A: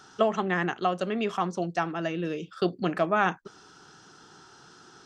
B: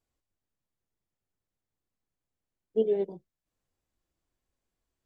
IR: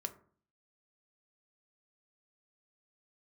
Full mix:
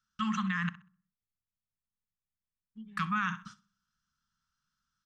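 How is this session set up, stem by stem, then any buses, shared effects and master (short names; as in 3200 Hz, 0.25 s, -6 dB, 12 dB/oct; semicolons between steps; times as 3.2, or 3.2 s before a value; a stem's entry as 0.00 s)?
+0.5 dB, 0.00 s, muted 0.69–2.97, send -9 dB, echo send -16 dB, gate -45 dBFS, range -33 dB; bell 540 Hz -7 dB 0.65 oct
-6.0 dB, 0.00 s, no send, no echo send, high shelf 2400 Hz -9.5 dB; limiter -21 dBFS, peak gain reduction 6 dB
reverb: on, RT60 0.50 s, pre-delay 3 ms
echo: feedback echo 64 ms, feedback 23%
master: elliptic band-stop 220–1100 Hz, stop band 40 dB; limiter -22 dBFS, peak gain reduction 9 dB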